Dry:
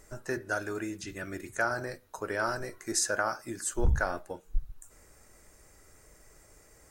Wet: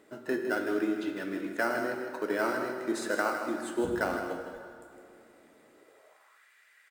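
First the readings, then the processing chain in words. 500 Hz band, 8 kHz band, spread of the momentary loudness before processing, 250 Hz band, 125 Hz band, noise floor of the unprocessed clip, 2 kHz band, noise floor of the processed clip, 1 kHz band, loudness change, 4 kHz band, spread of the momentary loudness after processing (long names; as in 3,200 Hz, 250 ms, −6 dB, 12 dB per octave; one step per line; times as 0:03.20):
+4.0 dB, −12.5 dB, 11 LU, +7.0 dB, −12.0 dB, −59 dBFS, 0.0 dB, −62 dBFS, +1.0 dB, +1.0 dB, −3.5 dB, 8 LU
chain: high shelf with overshoot 4,500 Hz −8 dB, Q 3
in parallel at −9 dB: sample-rate reduction 3,500 Hz, jitter 0%
on the sum: single-tap delay 158 ms −8.5 dB
dense smooth reverb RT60 2.4 s, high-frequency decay 0.8×, DRR 5 dB
high-pass filter sweep 260 Hz → 1,800 Hz, 0:05.72–0:06.49
level −3.5 dB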